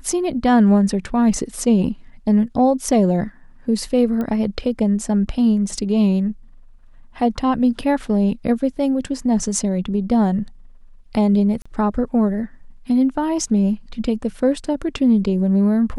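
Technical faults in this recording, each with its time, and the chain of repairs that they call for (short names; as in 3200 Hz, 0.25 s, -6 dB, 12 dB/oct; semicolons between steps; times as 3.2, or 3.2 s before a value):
4.21 pop -15 dBFS
11.62–11.65 gap 35 ms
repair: de-click; interpolate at 11.62, 35 ms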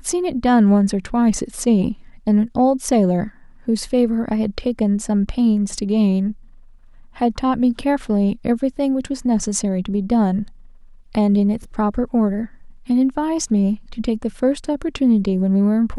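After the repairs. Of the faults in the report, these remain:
none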